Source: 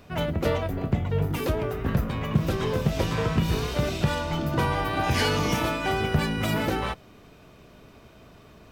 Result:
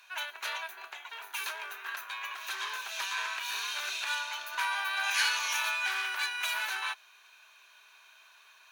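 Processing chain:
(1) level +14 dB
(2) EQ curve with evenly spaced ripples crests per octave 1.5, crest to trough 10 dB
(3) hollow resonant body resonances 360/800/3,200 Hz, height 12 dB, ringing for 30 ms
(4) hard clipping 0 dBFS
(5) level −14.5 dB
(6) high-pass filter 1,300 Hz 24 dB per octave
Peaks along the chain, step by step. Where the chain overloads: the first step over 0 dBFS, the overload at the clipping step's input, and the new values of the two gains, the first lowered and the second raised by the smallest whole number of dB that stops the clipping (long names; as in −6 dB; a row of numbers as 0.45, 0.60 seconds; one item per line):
+5.0, +4.5, +8.5, 0.0, −14.5, −15.0 dBFS
step 1, 8.5 dB
step 1 +5 dB, step 5 −5.5 dB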